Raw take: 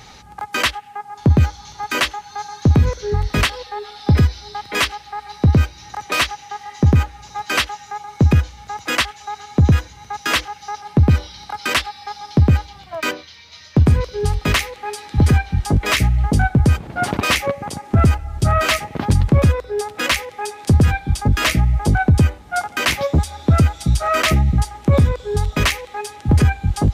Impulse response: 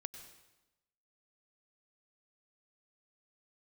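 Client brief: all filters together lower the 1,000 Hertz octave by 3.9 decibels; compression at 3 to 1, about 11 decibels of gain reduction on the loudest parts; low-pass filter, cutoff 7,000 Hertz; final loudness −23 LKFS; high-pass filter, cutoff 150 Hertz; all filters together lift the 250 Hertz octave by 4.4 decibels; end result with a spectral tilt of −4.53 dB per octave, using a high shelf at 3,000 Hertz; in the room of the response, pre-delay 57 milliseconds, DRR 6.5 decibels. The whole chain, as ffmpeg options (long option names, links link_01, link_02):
-filter_complex "[0:a]highpass=150,lowpass=7000,equalizer=frequency=250:width_type=o:gain=7.5,equalizer=frequency=1000:width_type=o:gain=-5,highshelf=frequency=3000:gain=-5.5,acompressor=threshold=-23dB:ratio=3,asplit=2[link_01][link_02];[1:a]atrim=start_sample=2205,adelay=57[link_03];[link_02][link_03]afir=irnorm=-1:irlink=0,volume=-3.5dB[link_04];[link_01][link_04]amix=inputs=2:normalize=0,volume=4.5dB"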